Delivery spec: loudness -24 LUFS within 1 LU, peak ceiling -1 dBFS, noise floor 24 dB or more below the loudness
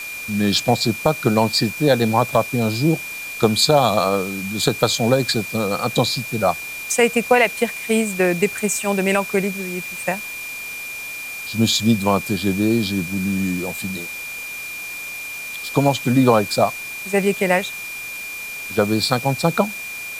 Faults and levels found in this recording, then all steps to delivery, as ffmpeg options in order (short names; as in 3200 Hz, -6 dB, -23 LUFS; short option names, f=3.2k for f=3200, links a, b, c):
steady tone 2400 Hz; tone level -29 dBFS; noise floor -31 dBFS; noise floor target -44 dBFS; loudness -20.0 LUFS; peak -2.5 dBFS; loudness target -24.0 LUFS
-> -af "bandreject=f=2.4k:w=30"
-af "afftdn=nr=13:nf=-31"
-af "volume=-4dB"